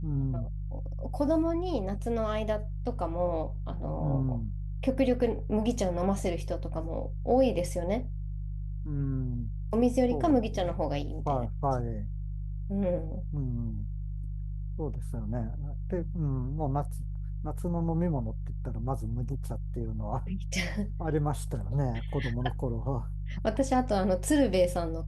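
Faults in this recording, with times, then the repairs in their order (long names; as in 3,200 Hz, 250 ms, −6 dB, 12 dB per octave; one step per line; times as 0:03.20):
mains hum 50 Hz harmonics 3 −35 dBFS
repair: hum removal 50 Hz, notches 3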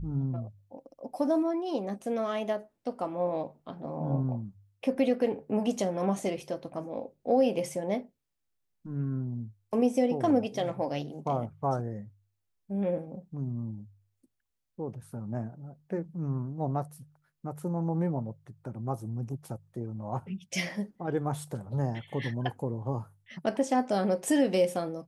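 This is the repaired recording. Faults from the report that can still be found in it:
none of them is left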